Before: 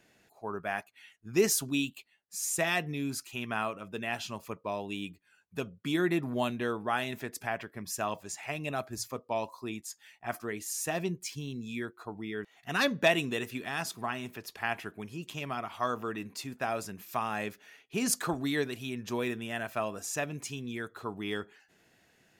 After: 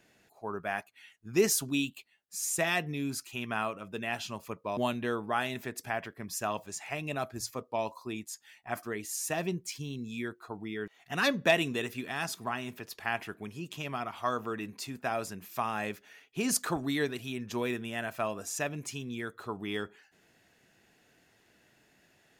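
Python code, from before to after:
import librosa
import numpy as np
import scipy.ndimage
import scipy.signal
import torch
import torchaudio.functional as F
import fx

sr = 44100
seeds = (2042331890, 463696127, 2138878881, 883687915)

y = fx.edit(x, sr, fx.cut(start_s=4.77, length_s=1.57), tone=tone)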